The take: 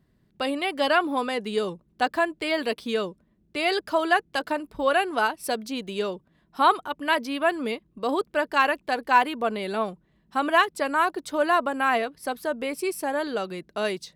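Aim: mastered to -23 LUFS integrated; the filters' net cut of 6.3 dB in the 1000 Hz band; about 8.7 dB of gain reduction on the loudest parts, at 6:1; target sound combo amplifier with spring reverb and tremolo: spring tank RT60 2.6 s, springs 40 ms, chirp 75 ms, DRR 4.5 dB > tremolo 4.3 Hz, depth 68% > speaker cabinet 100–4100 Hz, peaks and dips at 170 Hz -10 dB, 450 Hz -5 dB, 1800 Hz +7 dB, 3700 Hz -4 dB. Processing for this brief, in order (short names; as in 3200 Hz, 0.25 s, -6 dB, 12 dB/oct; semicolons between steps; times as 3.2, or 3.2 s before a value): bell 1000 Hz -8.5 dB; compressor 6:1, threshold -29 dBFS; spring tank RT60 2.6 s, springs 40 ms, chirp 75 ms, DRR 4.5 dB; tremolo 4.3 Hz, depth 68%; speaker cabinet 100–4100 Hz, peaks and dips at 170 Hz -10 dB, 450 Hz -5 dB, 1800 Hz +7 dB, 3700 Hz -4 dB; gain +13 dB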